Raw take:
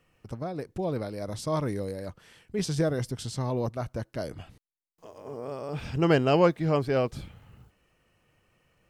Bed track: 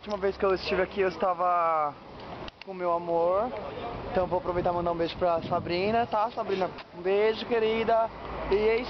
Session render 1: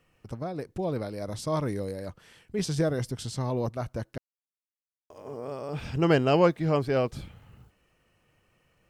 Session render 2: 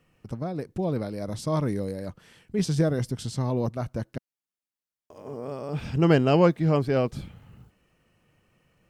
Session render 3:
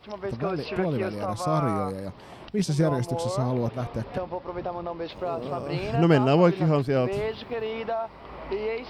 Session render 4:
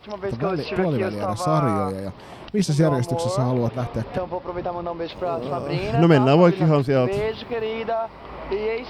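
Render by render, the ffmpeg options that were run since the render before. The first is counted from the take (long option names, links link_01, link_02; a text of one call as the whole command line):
ffmpeg -i in.wav -filter_complex "[0:a]asplit=3[link_01][link_02][link_03];[link_01]atrim=end=4.18,asetpts=PTS-STARTPTS,afade=type=out:start_time=4.176:duration=0.004:curve=hsin[link_04];[link_02]atrim=start=4.18:end=5.1,asetpts=PTS-STARTPTS,volume=0[link_05];[link_03]atrim=start=5.1,asetpts=PTS-STARTPTS,afade=type=in:duration=0.004:curve=hsin[link_06];[link_04][link_05][link_06]concat=n=3:v=0:a=1" out.wav
ffmpeg -i in.wav -af "equalizer=frequency=190:width_type=o:width=1.5:gain=5.5" out.wav
ffmpeg -i in.wav -i bed.wav -filter_complex "[1:a]volume=-5dB[link_01];[0:a][link_01]amix=inputs=2:normalize=0" out.wav
ffmpeg -i in.wav -af "volume=4.5dB,alimiter=limit=-2dB:level=0:latency=1" out.wav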